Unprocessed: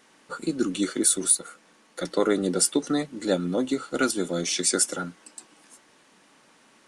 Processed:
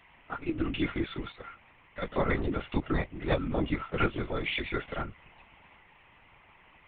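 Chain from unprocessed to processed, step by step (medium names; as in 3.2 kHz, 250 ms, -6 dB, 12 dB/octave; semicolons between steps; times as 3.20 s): cabinet simulation 360–2400 Hz, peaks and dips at 740 Hz -9 dB, 1.1 kHz -8 dB, 1.8 kHz +4 dB; static phaser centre 1.6 kHz, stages 6; LPC vocoder at 8 kHz whisper; trim +8.5 dB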